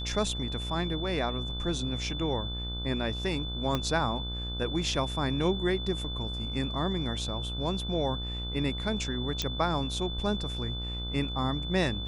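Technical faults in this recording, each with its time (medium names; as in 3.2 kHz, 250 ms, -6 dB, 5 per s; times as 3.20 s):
buzz 60 Hz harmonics 26 -36 dBFS
whine 3.5 kHz -37 dBFS
3.75 s: pop -15 dBFS
9.42 s: pop -15 dBFS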